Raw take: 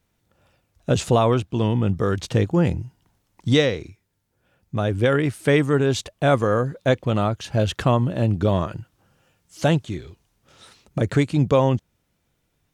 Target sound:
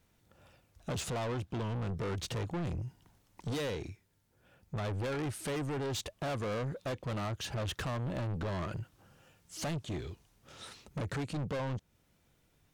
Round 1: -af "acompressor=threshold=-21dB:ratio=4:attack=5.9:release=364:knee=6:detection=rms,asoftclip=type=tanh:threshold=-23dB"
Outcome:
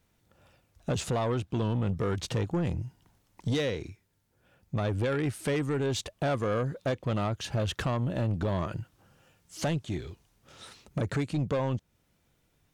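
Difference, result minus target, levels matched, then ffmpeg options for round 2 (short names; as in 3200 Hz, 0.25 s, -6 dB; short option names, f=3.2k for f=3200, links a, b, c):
soft clip: distortion -8 dB
-af "acompressor=threshold=-21dB:ratio=4:attack=5.9:release=364:knee=6:detection=rms,asoftclip=type=tanh:threshold=-33dB"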